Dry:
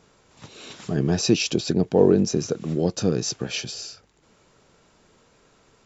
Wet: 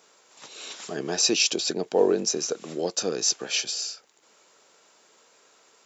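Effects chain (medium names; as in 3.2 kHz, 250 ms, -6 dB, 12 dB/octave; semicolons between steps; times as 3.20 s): high-pass 450 Hz 12 dB/octave; treble shelf 5.6 kHz +10 dB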